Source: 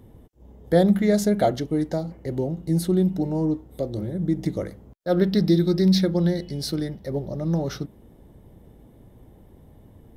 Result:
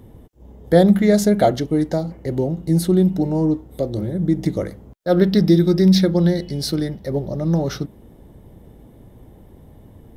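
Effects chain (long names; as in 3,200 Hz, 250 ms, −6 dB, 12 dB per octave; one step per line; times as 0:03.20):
0:05.37–0:05.96: notch filter 4,200 Hz, Q 5.8
level +5 dB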